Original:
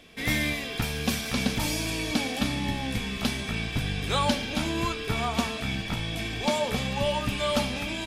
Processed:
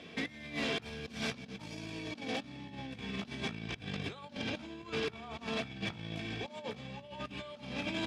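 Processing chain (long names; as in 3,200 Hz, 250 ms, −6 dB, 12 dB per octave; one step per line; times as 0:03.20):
low-shelf EQ 400 Hz +6.5 dB
mains-hum notches 50/100/150/200/250/300 Hz
compressor whose output falls as the input rises −32 dBFS, ratio −0.5
wave folding −22 dBFS
band-pass filter 130–5,100 Hz
level −5.5 dB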